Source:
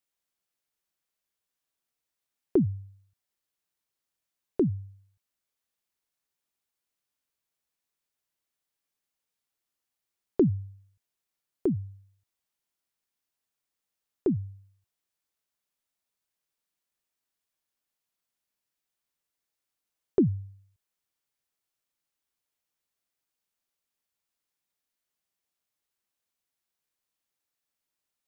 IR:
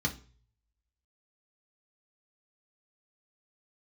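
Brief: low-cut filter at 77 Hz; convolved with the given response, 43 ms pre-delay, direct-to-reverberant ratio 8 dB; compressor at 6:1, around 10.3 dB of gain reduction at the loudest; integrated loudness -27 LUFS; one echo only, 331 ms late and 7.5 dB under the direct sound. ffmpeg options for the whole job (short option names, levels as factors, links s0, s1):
-filter_complex "[0:a]highpass=77,acompressor=threshold=0.0355:ratio=6,aecho=1:1:331:0.422,asplit=2[s0][s1];[1:a]atrim=start_sample=2205,adelay=43[s2];[s1][s2]afir=irnorm=-1:irlink=0,volume=0.2[s3];[s0][s3]amix=inputs=2:normalize=0,volume=3.16"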